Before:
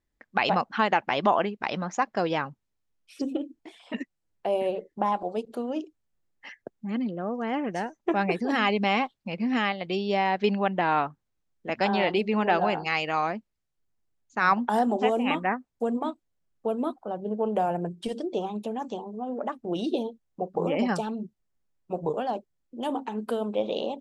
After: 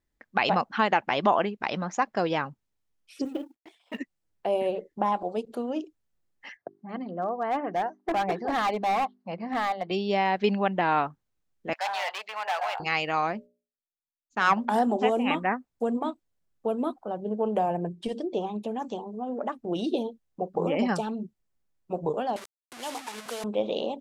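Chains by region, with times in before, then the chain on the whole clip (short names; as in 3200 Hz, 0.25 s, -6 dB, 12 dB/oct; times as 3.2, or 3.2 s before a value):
3.25–3.99 G.711 law mismatch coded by A + expander -58 dBFS + low shelf 160 Hz -10.5 dB
6.57–9.91 speaker cabinet 140–4400 Hz, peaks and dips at 230 Hz -9 dB, 430 Hz -3 dB, 720 Hz +8 dB, 1100 Hz +5 dB, 2500 Hz -10 dB, 3500 Hz -9 dB + notches 50/100/150/200/250/300/350/400 Hz + hard clip -22 dBFS
11.73–12.8 hard clip -22 dBFS + inverse Chebyshev high-pass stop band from 340 Hz
13.33–14.76 self-modulated delay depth 0.059 ms + expander -55 dBFS + notches 60/120/180/240/300/360/420/480/540/600 Hz
17.59–18.69 high shelf 7000 Hz -8 dB + notch 1400 Hz, Q 5.7
22.36–23.44 delta modulation 64 kbps, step -30 dBFS + HPF 1100 Hz 6 dB/oct
whole clip: dry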